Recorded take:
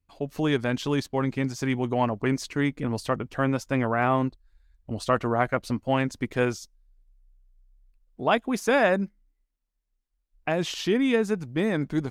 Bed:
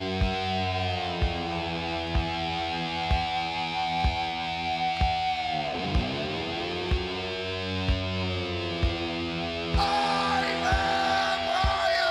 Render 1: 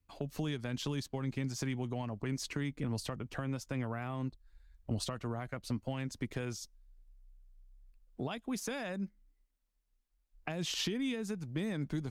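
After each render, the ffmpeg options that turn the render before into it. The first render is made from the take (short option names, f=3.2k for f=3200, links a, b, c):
-filter_complex "[0:a]alimiter=limit=-21dB:level=0:latency=1:release=350,acrossover=split=200|3000[a][b][c];[b]acompressor=threshold=-39dB:ratio=6[d];[a][d][c]amix=inputs=3:normalize=0"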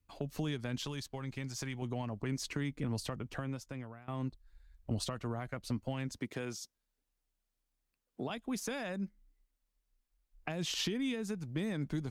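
-filter_complex "[0:a]asettb=1/sr,asplit=3[a][b][c];[a]atrim=end=0.854[d];[b]atrim=start=0.85:end=1.82,asetpts=PTS-STARTPTS,afade=t=in:d=0.004:c=qsin,afade=t=out:st=0.966:d=0.004:c=qsin,equalizer=f=240:t=o:w=2.3:g=-6.5[e];[c]atrim=start=1.816[f];[d][e]acrossfade=d=0.004:c1=hsin:c2=qsin[g];[g][f]acrossfade=d=0.004:c1=qsin:c2=hsin,asettb=1/sr,asplit=3[h][i][j];[h]atrim=end=6.184[k];[i]atrim=start=6.18:end=8.3,asetpts=PTS-STARTPTS,afade=t=in:d=0.004:c=qsin,afade=t=out:st=2.116:d=0.004:c=qsin,highpass=160[l];[j]atrim=start=8.296[m];[k][l]acrossfade=d=0.004:c1=hsin:c2=qsin[n];[n][m]acrossfade=d=0.004:c1=qsin:c2=hsin,asplit=2[o][p];[o]atrim=end=4.08,asetpts=PTS-STARTPTS,afade=t=out:st=3.3:d=0.78:silence=0.1[q];[p]atrim=start=4.08,asetpts=PTS-STARTPTS,afade=t=in:d=0.004:c=hsin:silence=0.1[r];[q][r]concat=n=2:v=0:a=1"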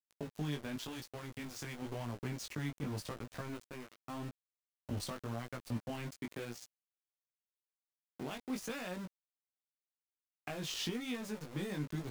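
-af "aeval=exprs='val(0)*gte(abs(val(0)),0.00944)':c=same,flanger=delay=16.5:depth=4.2:speed=0.9"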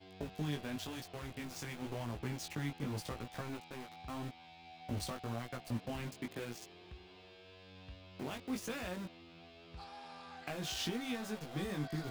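-filter_complex "[1:a]volume=-26dB[a];[0:a][a]amix=inputs=2:normalize=0"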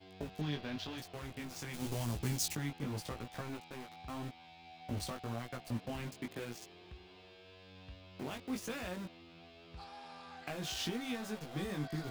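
-filter_complex "[0:a]asettb=1/sr,asplit=3[a][b][c];[a]atrim=end=0.414[d];[b]atrim=start=0.41:end=0.98,asetpts=PTS-STARTPTS,afade=t=in:d=0.004:c=qsin,afade=t=out:st=0.566:d=0.004:c=qsin,highshelf=f=6.3k:t=q:w=1.5:g=-11.5[e];[c]atrim=start=0.976[f];[d][e]acrossfade=d=0.004:c1=hsin:c2=qsin[g];[g][f]acrossfade=d=0.004:c1=qsin:c2=hsin,asplit=3[h][i][j];[h]afade=t=out:st=1.73:d=0.02[k];[i]bass=f=250:g=6,treble=f=4k:g=14,afade=t=in:st=1.73:d=0.02,afade=t=out:st=2.55:d=0.02[l];[j]afade=t=in:st=2.55:d=0.02[m];[k][l][m]amix=inputs=3:normalize=0"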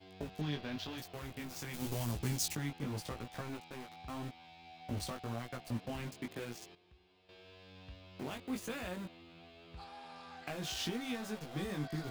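-filter_complex "[0:a]asettb=1/sr,asplit=3[a][b][c];[a]atrim=end=0.714[d];[b]atrim=start=0.71:end=2.12,asetpts=PTS-STARTPTS,afade=t=in:d=0.004:c=qsin,afade=t=out:st=1.406:d=0.004:c=qsin,equalizer=f=16k:w=1.2:g=8.5[e];[c]atrim=start=2.116[f];[d][e]acrossfade=d=0.004:c1=hsin:c2=qsin[g];[g][f]acrossfade=d=0.004:c1=qsin:c2=hsin,asettb=1/sr,asplit=3[h][i][j];[h]atrim=end=8.344[k];[i]atrim=start=8.34:end=10.16,asetpts=PTS-STARTPTS,afade=t=in:d=0.004:c=qsin,afade=t=out:st=1.816:d=0.004:c=qsin,equalizer=f=5.5k:w=4.7:g=-6[l];[j]atrim=start=10.156[m];[k][l]acrossfade=d=0.004:c1=hsin:c2=qsin[n];[n][m]acrossfade=d=0.004:c1=qsin:c2=hsin,asplit=3[o][p][q];[o]atrim=end=6.752[r];[p]atrim=start=6.748:end=7.292,asetpts=PTS-STARTPTS,volume=-12dB[s];[q]atrim=start=7.288[t];[r][s]acrossfade=d=0.004:c1=hsin:c2=hsin[u];[u][t]acrossfade=d=0.004:c1=hsin:c2=hsin"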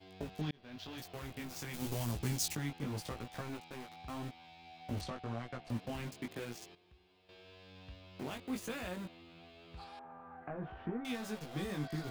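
-filter_complex "[0:a]asettb=1/sr,asplit=3[a][b][c];[a]atrim=end=5.014[d];[b]atrim=start=5.01:end=5.7,asetpts=PTS-STARTPTS,afade=t=in:d=0.004:c=qsin,afade=t=out:st=0.686:d=0.004:c=qsin,adynamicsmooth=sensitivity=4:basefreq=4.6k[e];[c]atrim=start=5.696[f];[d][e]acrossfade=d=0.004:c1=hsin:c2=qsin[g];[g][f]acrossfade=d=0.004:c1=qsin:c2=hsin,asettb=1/sr,asplit=3[h][i][j];[h]atrim=end=9.994[k];[i]atrim=start=9.99:end=11.05,asetpts=PTS-STARTPTS,afade=t=in:d=0.004:c=qsin,afade=t=out:st=1.056:d=0.004:c=qsin,lowpass=f=1.5k:w=0.5412,lowpass=f=1.5k:w=1.3066[l];[j]atrim=start=11.046[m];[k][l]acrossfade=d=0.004:c1=hsin:c2=qsin[n];[n][m]acrossfade=d=0.004:c1=qsin:c2=hsin,asplit=2[o][p];[o]atrim=end=0.51,asetpts=PTS-STARTPTS,afade=t=out:st=0.506:d=0.004:c=hsin[q];[p]atrim=start=0.51,asetpts=PTS-STARTPTS,afade=t=in:d=0.57[r];[q][r]concat=n=2:v=0:a=1"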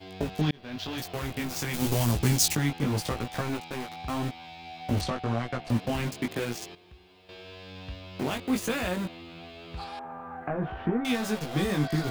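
-af "volume=12dB"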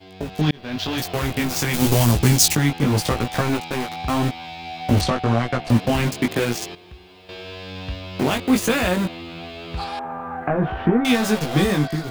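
-af "dynaudnorm=f=120:g=7:m=10dB"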